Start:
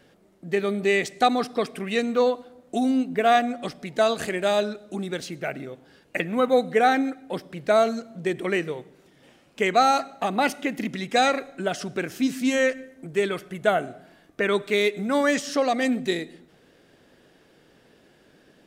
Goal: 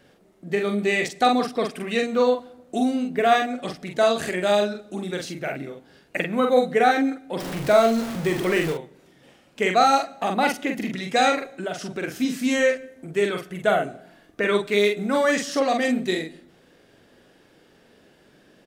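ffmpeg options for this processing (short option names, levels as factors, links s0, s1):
-filter_complex "[0:a]asettb=1/sr,asplit=3[s0][s1][s2];[s0]atrim=end=7.404[s3];[s1]atrim=start=7.4:end=8.73,asetpts=PTS-STARTPTS,afade=t=in:d=0.004:c=qsin,afade=t=out:st=1.326:d=0.004:c=qsin,aeval=exprs='val(0)+0.5*0.0398*sgn(val(0))':c=same[s4];[s2]atrim=start=8.726[s5];[s3][s4]acrossfade=d=0.004:c1=hsin:c2=qsin[s6];[s6][s5]acrossfade=d=0.004:c1=qsin:c2=hsin,asplit=2[s7][s8];[s8]adelay=44,volume=0.631[s9];[s7][s9]amix=inputs=2:normalize=0,asettb=1/sr,asplit=3[s10][s11][s12];[s10]atrim=end=11.514[s13];[s11]atrim=start=11.51:end=12.03,asetpts=PTS-STARTPTS,afade=t=in:d=0.004:c=qsin,afade=t=out:st=0.516:d=0.004:c=qsin,acompressor=threshold=0.0355:ratio=2[s14];[s12]atrim=start=12.026[s15];[s13][s14]acrossfade=d=0.004:c1=hsin:c2=qsin[s16];[s16][s15]acrossfade=d=0.004:c1=qsin:c2=hsin"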